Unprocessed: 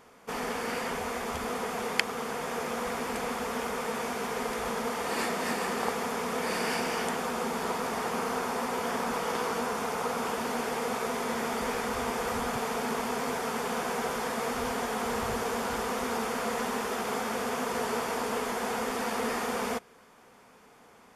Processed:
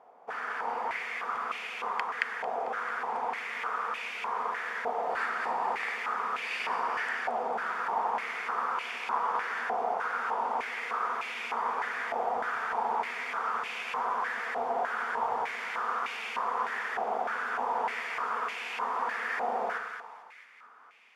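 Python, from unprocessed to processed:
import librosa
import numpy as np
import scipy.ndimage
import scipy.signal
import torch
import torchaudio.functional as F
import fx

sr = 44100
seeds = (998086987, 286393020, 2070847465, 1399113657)

y = fx.echo_split(x, sr, split_hz=1200.0, low_ms=92, high_ms=223, feedback_pct=52, wet_db=-5.0)
y = fx.filter_held_bandpass(y, sr, hz=3.3, low_hz=740.0, high_hz=2500.0)
y = y * librosa.db_to_amplitude(7.0)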